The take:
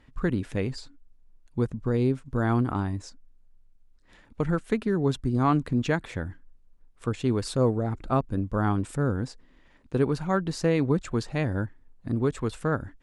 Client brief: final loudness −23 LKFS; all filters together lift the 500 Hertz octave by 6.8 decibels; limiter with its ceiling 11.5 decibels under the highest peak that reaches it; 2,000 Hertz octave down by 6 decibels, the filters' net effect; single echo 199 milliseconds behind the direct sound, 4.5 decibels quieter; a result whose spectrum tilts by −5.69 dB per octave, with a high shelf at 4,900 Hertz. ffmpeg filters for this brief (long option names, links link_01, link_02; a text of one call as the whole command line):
ffmpeg -i in.wav -af "equalizer=frequency=500:width_type=o:gain=8.5,equalizer=frequency=2000:width_type=o:gain=-8,highshelf=frequency=4900:gain=-8.5,alimiter=limit=-19.5dB:level=0:latency=1,aecho=1:1:199:0.596,volume=6dB" out.wav